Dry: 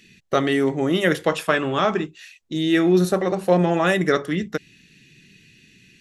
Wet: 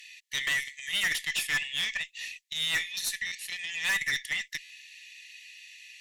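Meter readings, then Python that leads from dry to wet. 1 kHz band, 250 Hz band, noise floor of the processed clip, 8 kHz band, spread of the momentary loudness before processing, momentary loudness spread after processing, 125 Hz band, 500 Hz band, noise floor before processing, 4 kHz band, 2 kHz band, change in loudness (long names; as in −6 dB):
−23.0 dB, −35.0 dB, −63 dBFS, +4.0 dB, 9 LU, 19 LU, −27.5 dB, −36.0 dB, −55 dBFS, +1.5 dB, −2.0 dB, −9.0 dB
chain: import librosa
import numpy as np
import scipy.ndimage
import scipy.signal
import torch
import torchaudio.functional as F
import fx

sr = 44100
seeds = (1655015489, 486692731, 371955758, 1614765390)

y = fx.brickwall_highpass(x, sr, low_hz=1700.0)
y = fx.tube_stage(y, sr, drive_db=29.0, bias=0.2)
y = fx.buffer_glitch(y, sr, at_s=(3.26, 4.64), block=512, repeats=4)
y = y * librosa.db_to_amplitude(5.5)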